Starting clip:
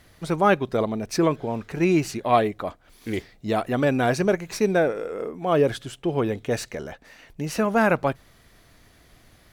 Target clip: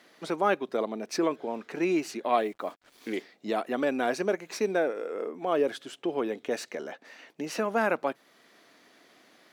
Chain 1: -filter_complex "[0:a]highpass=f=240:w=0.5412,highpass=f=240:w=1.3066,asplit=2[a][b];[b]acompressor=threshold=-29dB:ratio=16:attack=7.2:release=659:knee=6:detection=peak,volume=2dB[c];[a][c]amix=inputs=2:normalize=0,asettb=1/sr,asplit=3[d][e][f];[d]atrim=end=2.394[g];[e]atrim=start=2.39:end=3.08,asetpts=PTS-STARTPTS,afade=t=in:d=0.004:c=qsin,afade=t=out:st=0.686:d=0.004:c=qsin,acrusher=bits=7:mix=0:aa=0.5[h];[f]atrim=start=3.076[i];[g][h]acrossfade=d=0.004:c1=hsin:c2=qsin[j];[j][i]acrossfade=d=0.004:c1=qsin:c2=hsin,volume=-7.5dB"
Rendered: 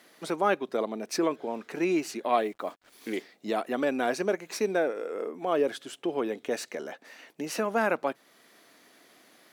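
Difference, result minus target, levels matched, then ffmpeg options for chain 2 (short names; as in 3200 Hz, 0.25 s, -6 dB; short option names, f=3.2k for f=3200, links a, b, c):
8000 Hz band +2.5 dB
-filter_complex "[0:a]highpass=f=240:w=0.5412,highpass=f=240:w=1.3066,asplit=2[a][b];[b]acompressor=threshold=-29dB:ratio=16:attack=7.2:release=659:knee=6:detection=peak,lowpass=7.5k,volume=2dB[c];[a][c]amix=inputs=2:normalize=0,asettb=1/sr,asplit=3[d][e][f];[d]atrim=end=2.394[g];[e]atrim=start=2.39:end=3.08,asetpts=PTS-STARTPTS,afade=t=in:d=0.004:c=qsin,afade=t=out:st=0.686:d=0.004:c=qsin,acrusher=bits=7:mix=0:aa=0.5[h];[f]atrim=start=3.076[i];[g][h]acrossfade=d=0.004:c1=hsin:c2=qsin[j];[j][i]acrossfade=d=0.004:c1=qsin:c2=hsin,volume=-7.5dB"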